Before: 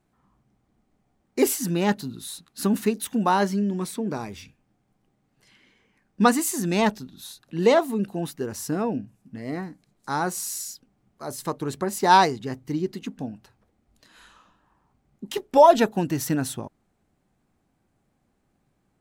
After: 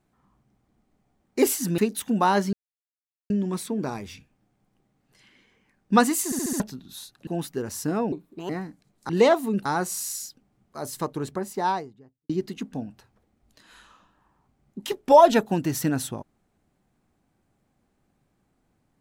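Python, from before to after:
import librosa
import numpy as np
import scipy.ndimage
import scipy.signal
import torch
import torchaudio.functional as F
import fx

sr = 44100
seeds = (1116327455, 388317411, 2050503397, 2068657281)

y = fx.studio_fade_out(x, sr, start_s=11.36, length_s=1.39)
y = fx.edit(y, sr, fx.cut(start_s=1.78, length_s=1.05),
    fx.insert_silence(at_s=3.58, length_s=0.77),
    fx.stutter_over(start_s=6.53, slice_s=0.07, count=5),
    fx.move(start_s=7.55, length_s=0.56, to_s=10.11),
    fx.speed_span(start_s=8.96, length_s=0.55, speed=1.47), tone=tone)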